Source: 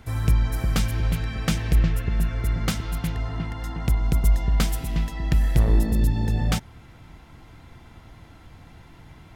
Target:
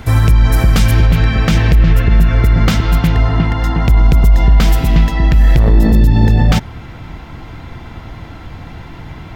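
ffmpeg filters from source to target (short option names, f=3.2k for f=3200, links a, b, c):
-af "asetnsamples=n=441:p=0,asendcmd='1.06 equalizer g -12',equalizer=f=10k:w=0.8:g=-3.5,alimiter=level_in=17.5dB:limit=-1dB:release=50:level=0:latency=1,volume=-1dB"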